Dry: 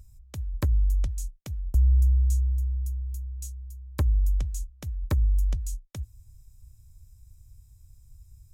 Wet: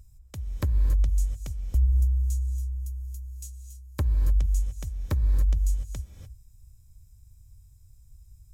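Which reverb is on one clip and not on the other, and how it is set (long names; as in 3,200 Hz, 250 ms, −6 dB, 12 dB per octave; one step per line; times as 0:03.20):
reverb whose tail is shaped and stops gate 320 ms rising, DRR 8 dB
level −1.5 dB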